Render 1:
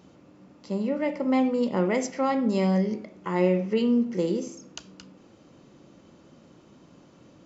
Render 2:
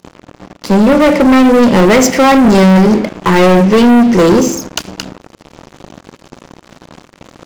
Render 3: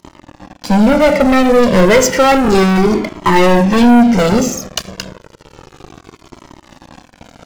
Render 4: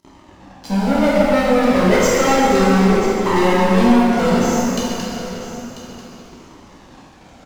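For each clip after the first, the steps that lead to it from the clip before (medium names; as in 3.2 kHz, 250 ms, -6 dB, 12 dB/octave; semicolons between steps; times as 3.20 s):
waveshaping leveller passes 5; trim +7.5 dB
Shepard-style flanger falling 0.31 Hz; trim +3 dB
delay 991 ms -13.5 dB; plate-style reverb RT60 3 s, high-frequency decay 0.8×, DRR -6.5 dB; trim -11.5 dB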